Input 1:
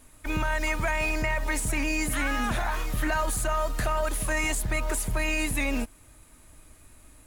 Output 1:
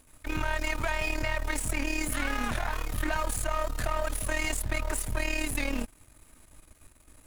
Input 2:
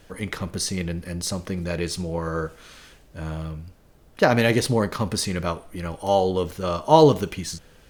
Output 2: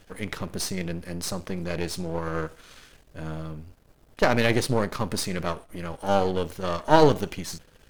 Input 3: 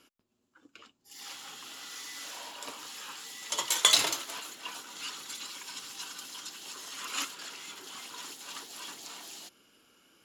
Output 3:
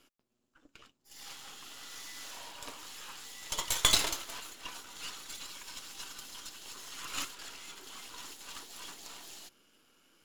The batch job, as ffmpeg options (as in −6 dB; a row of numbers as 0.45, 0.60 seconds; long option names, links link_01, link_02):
-af "aeval=exprs='if(lt(val(0),0),0.251*val(0),val(0))':channel_layout=same"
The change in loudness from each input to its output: −3.5, −3.0, −3.5 LU